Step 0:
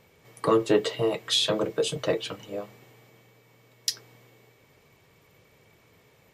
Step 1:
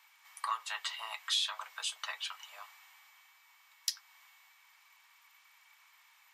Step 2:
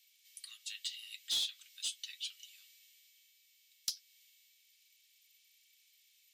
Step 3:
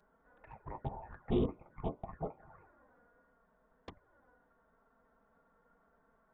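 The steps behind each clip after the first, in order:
steep high-pass 880 Hz 48 dB/octave; compression 1.5:1, threshold -41 dBFS, peak gain reduction 7.5 dB
inverse Chebyshev high-pass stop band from 920 Hz, stop band 60 dB; in parallel at -3.5 dB: wavefolder -30 dBFS; on the sum: trim -4 dB
frequency inversion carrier 3.7 kHz; touch-sensitive flanger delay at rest 5.1 ms, full sweep at -44.5 dBFS; trim +6.5 dB

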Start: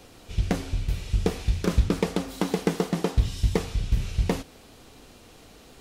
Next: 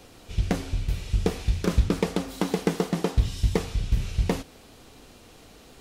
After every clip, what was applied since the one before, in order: no audible change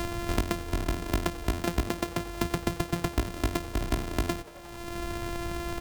sorted samples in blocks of 128 samples; frequency-shifting echo 89 ms, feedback 62%, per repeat +130 Hz, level -23 dB; three bands compressed up and down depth 100%; trim -5 dB

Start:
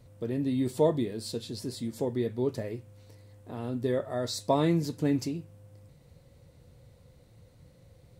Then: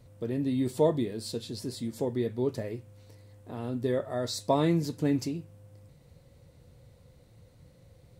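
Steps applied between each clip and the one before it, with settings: no audible change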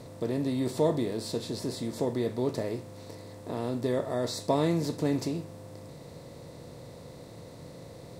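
spectral levelling over time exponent 0.6; trim -3 dB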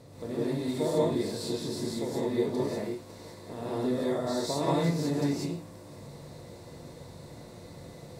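gated-style reverb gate 220 ms rising, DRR -7.5 dB; trim -7.5 dB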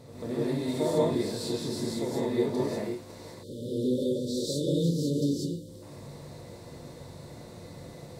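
spectral selection erased 3.43–5.82 s, 600–2900 Hz; pre-echo 137 ms -13.5 dB; trim +1 dB

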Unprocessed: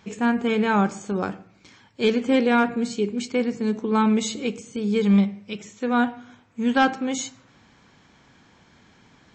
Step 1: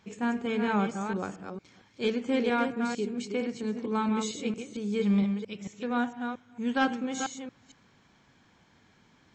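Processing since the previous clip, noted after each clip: chunks repeated in reverse 227 ms, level -6 dB; trim -8 dB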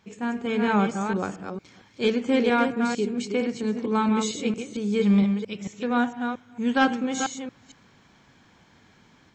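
level rider gain up to 5.5 dB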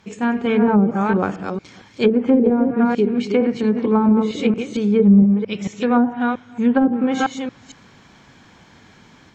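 low-pass that closes with the level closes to 390 Hz, closed at -17 dBFS; trim +8.5 dB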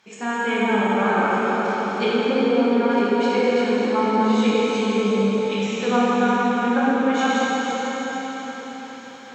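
high-pass 700 Hz 6 dB/octave; reverberation RT60 5.3 s, pre-delay 8 ms, DRR -8.5 dB; trim -3 dB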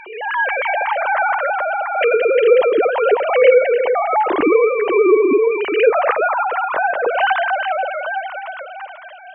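formants replaced by sine waves; swell ahead of each attack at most 65 dB/s; trim +3.5 dB

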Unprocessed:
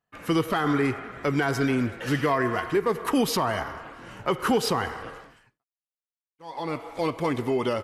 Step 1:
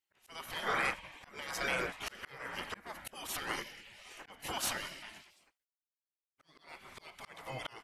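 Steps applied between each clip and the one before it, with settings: spectral gate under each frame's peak -15 dB weak; slow attack 505 ms; trim +1.5 dB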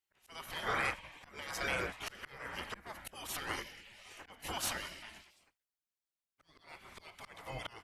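octave divider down 2 oct, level -3 dB; trim -1.5 dB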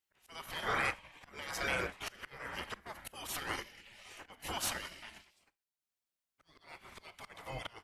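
Schroeder reverb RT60 0.3 s, combs from 29 ms, DRR 17 dB; transient shaper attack -1 dB, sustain -6 dB; trim +1 dB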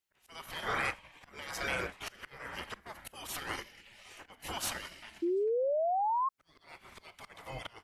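painted sound rise, 5.22–6.29 s, 330–1100 Hz -30 dBFS

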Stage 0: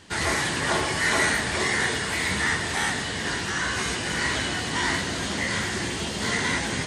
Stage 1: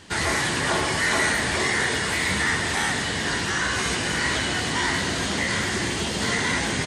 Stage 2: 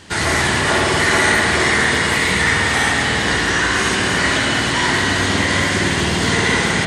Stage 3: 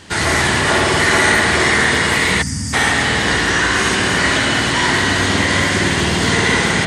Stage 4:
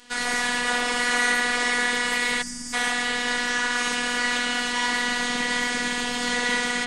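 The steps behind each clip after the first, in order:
in parallel at +2 dB: peak limiter -19 dBFS, peak gain reduction 8.5 dB; on the sum: frequency-shifting echo 195 ms, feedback 55%, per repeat +59 Hz, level -14.5 dB; trim -4 dB
spring tank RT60 3.5 s, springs 52 ms, chirp 20 ms, DRR 0 dB; trim +5 dB
time-frequency box 2.42–2.73 s, 290–4500 Hz -23 dB; trim +1.5 dB
bass shelf 400 Hz -7 dB; robot voice 243 Hz; trim -6 dB

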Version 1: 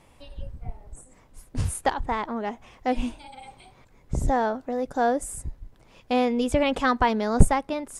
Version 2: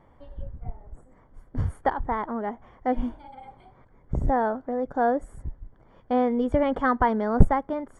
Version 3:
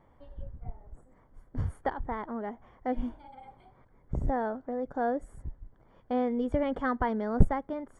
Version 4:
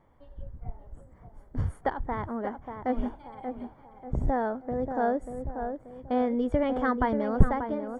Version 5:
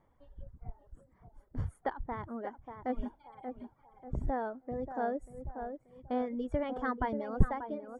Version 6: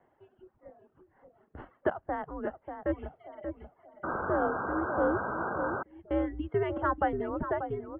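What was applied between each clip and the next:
Savitzky-Golay filter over 41 samples
dynamic bell 1 kHz, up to -4 dB, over -34 dBFS, Q 1.2; trim -5 dB
level rider gain up to 4 dB; tape echo 586 ms, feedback 46%, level -6 dB, low-pass 1.4 kHz; trim -1.5 dB
reverb removal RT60 0.95 s; trim -6 dB
painted sound noise, 4.03–5.83 s, 230–1800 Hz -40 dBFS; mistuned SSB -180 Hz 240–3000 Hz; bass shelf 140 Hz -10 dB; trim +7 dB

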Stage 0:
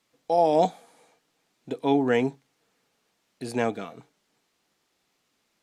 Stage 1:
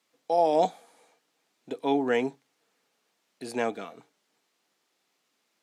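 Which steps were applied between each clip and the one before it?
Bessel high-pass 260 Hz, order 2; trim -1.5 dB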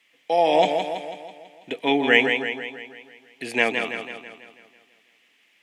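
high-order bell 2.4 kHz +14.5 dB 1.1 oct; modulated delay 164 ms, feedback 54%, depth 57 cents, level -6.5 dB; trim +3.5 dB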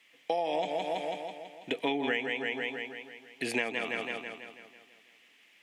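compression 12:1, threshold -27 dBFS, peak gain reduction 16.5 dB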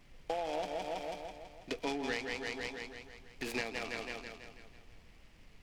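added noise brown -50 dBFS; delay time shaken by noise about 1.9 kHz, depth 0.038 ms; trim -6 dB

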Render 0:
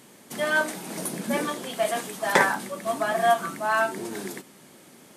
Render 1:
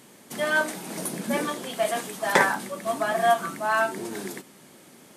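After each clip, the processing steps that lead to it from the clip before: no audible change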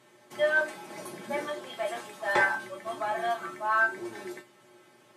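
overdrive pedal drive 10 dB, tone 1.7 kHz, clips at -3.5 dBFS; feedback comb 120 Hz, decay 0.19 s, harmonics odd, mix 90%; trim +3.5 dB

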